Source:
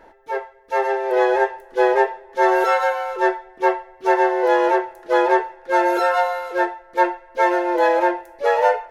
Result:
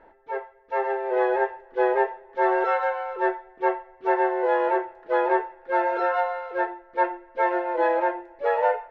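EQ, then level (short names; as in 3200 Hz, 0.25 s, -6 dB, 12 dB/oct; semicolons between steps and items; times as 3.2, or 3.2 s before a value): LPF 2600 Hz 12 dB/oct; air absorption 54 m; notches 50/100/150/200/250/300/350 Hz; -5.0 dB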